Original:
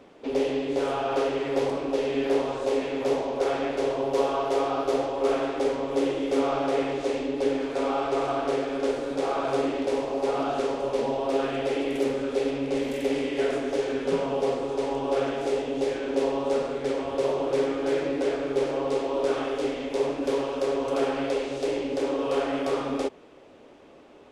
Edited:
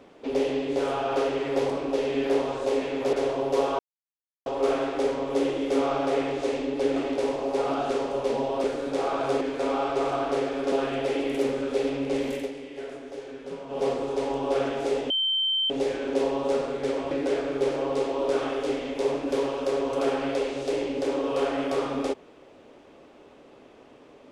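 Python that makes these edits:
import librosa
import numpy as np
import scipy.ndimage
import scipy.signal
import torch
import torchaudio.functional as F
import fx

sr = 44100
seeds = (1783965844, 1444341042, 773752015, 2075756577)

y = fx.edit(x, sr, fx.cut(start_s=3.13, length_s=0.61),
    fx.silence(start_s=4.4, length_s=0.67),
    fx.swap(start_s=7.57, length_s=1.31, other_s=9.65, other_length_s=1.68),
    fx.fade_down_up(start_s=12.95, length_s=1.51, db=-11.5, fade_s=0.17),
    fx.insert_tone(at_s=15.71, length_s=0.6, hz=3110.0, db=-22.0),
    fx.cut(start_s=17.12, length_s=0.94), tone=tone)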